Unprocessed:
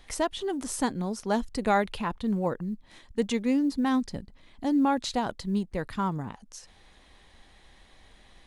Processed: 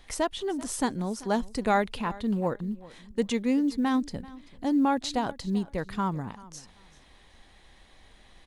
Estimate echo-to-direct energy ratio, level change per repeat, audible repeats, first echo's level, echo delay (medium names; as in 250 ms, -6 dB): -20.0 dB, -13.5 dB, 2, -20.0 dB, 387 ms